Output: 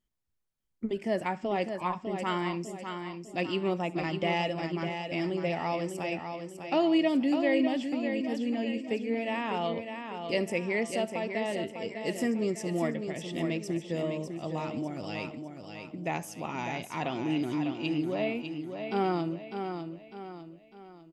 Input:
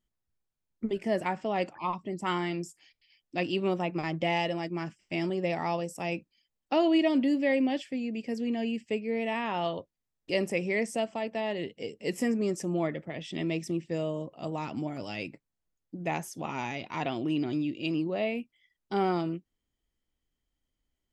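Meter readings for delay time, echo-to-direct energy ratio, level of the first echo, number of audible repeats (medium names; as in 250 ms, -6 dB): 71 ms, -6.0 dB, -22.0 dB, 7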